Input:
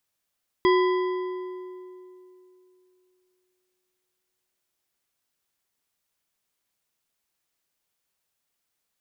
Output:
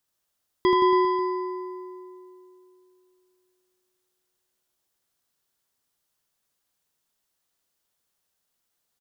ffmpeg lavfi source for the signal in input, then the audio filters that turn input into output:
-f lavfi -i "aevalsrc='0.158*pow(10,-3*t/3)*sin(2*PI*367*t)+0.0841*pow(10,-3*t/2.213)*sin(2*PI*1011.8*t)+0.0447*pow(10,-3*t/1.808)*sin(2*PI*1983.3*t)+0.0237*pow(10,-3*t/1.555)*sin(2*PI*3278.4*t)+0.0126*pow(10,-3*t/1.379)*sin(2*PI*4895.8*t)':d=4.76:s=44100"
-af "equalizer=f=2.3k:w=2.8:g=-5,aecho=1:1:80|172|277.8|399.5|539.4:0.631|0.398|0.251|0.158|0.1"

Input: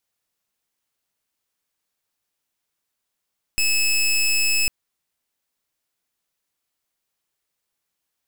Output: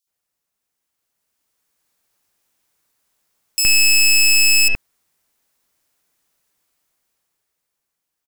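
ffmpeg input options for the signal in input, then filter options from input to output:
-f lavfi -i "aevalsrc='0.112*(2*lt(mod(2600*t,1),0.18)-1)':d=1.1:s=44100"
-filter_complex "[0:a]dynaudnorm=f=220:g=13:m=10.5dB,asoftclip=type=hard:threshold=-12dB,acrossover=split=3300[a][b];[a]adelay=70[c];[c][b]amix=inputs=2:normalize=0"

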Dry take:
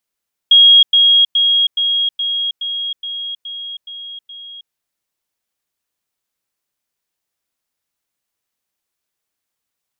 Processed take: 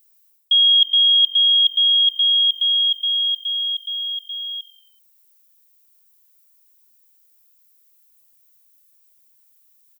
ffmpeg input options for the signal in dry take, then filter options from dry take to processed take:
-f lavfi -i "aevalsrc='pow(10,(-4-3*floor(t/0.42))/20)*sin(2*PI*3280*t)*clip(min(mod(t,0.42),0.32-mod(t,0.42))/0.005,0,1)':d=4.2:s=44100"
-filter_complex "[0:a]aemphasis=mode=production:type=riaa,areverse,acompressor=threshold=-14dB:ratio=5,areverse,asplit=5[a][b][c][d][e];[b]adelay=95,afreqshift=-45,volume=-21dB[f];[c]adelay=190,afreqshift=-90,volume=-25.9dB[g];[d]adelay=285,afreqshift=-135,volume=-30.8dB[h];[e]adelay=380,afreqshift=-180,volume=-35.6dB[i];[a][f][g][h][i]amix=inputs=5:normalize=0"

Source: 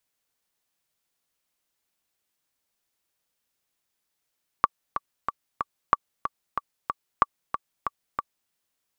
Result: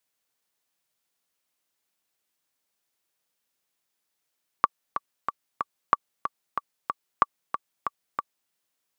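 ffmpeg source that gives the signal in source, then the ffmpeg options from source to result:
-f lavfi -i "aevalsrc='pow(10,(-4-9*gte(mod(t,4*60/186),60/186))/20)*sin(2*PI*1150*mod(t,60/186))*exp(-6.91*mod(t,60/186)/0.03)':d=3.87:s=44100"
-af "highpass=f=140:p=1"

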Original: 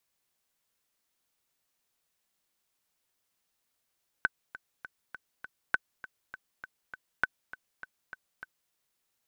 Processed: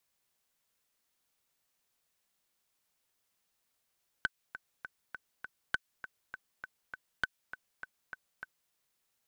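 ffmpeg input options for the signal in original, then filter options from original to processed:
-f lavfi -i "aevalsrc='pow(10,(-11.5-17*gte(mod(t,5*60/201),60/201))/20)*sin(2*PI*1520*mod(t,60/201))*exp(-6.91*mod(t,60/201)/0.03)':d=4.47:s=44100"
-filter_complex "[0:a]equalizer=f=320:t=o:w=0.35:g=-2,acrossover=split=1400[a][b];[a]acompressor=threshold=-41dB:ratio=6[c];[c][b]amix=inputs=2:normalize=0,aeval=exprs='clip(val(0),-1,0.0708)':c=same"

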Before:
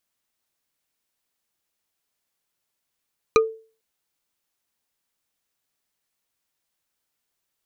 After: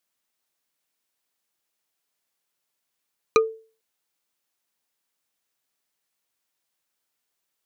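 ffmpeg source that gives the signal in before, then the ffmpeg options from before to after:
-f lavfi -i "aevalsrc='0.316*pow(10,-3*t/0.38)*sin(2*PI*445*t)+0.224*pow(10,-3*t/0.113)*sin(2*PI*1226.9*t)+0.158*pow(10,-3*t/0.05)*sin(2*PI*2404.8*t)+0.112*pow(10,-3*t/0.027)*sin(2*PI*3975.2*t)+0.0794*pow(10,-3*t/0.017)*sin(2*PI*5936.3*t)':d=0.45:s=44100"
-af "lowshelf=f=120:g=-10.5"

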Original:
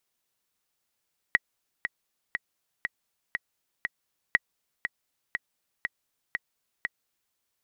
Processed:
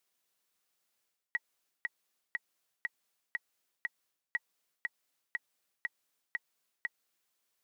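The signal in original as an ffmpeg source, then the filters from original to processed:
-f lavfi -i "aevalsrc='pow(10,(-6.5-9*gte(mod(t,6*60/120),60/120))/20)*sin(2*PI*1920*mod(t,60/120))*exp(-6.91*mod(t,60/120)/0.03)':d=6:s=44100"
-af "highpass=f=240:p=1,bandreject=f=900:w=21,areverse,acompressor=threshold=-34dB:ratio=6,areverse"

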